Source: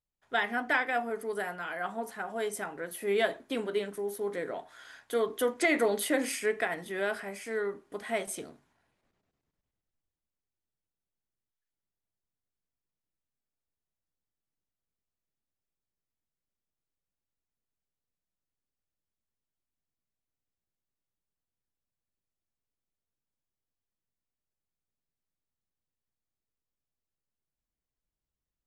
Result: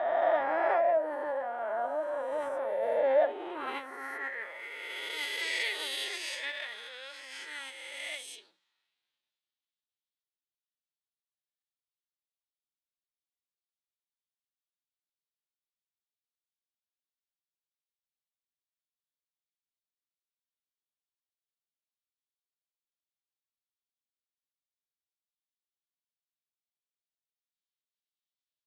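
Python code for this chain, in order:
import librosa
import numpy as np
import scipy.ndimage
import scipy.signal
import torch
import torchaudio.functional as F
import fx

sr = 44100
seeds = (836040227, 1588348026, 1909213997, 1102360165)

p1 = fx.spec_swells(x, sr, rise_s=2.76)
p2 = fx.pitch_keep_formants(p1, sr, semitones=5.0)
p3 = fx.schmitt(p2, sr, flips_db=-21.0)
p4 = p2 + F.gain(torch.from_numpy(p3), -10.0).numpy()
p5 = fx.filter_sweep_bandpass(p4, sr, from_hz=690.0, to_hz=3600.0, start_s=3.17, end_s=5.18, q=2.8)
y = F.gain(torch.from_numpy(p5), 2.5).numpy()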